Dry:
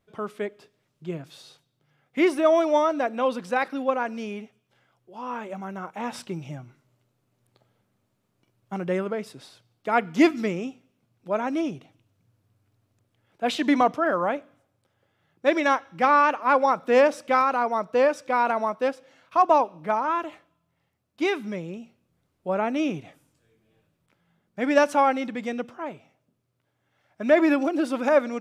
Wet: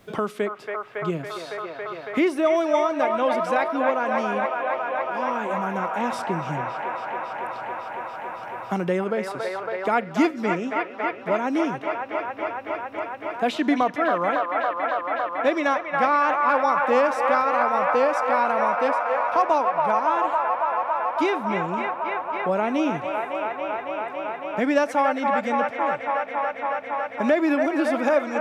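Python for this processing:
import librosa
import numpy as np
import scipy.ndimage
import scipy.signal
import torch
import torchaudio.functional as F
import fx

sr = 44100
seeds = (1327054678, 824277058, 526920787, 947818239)

y = fx.echo_wet_bandpass(x, sr, ms=278, feedback_pct=80, hz=1200.0, wet_db=-4)
y = fx.band_squash(y, sr, depth_pct=70)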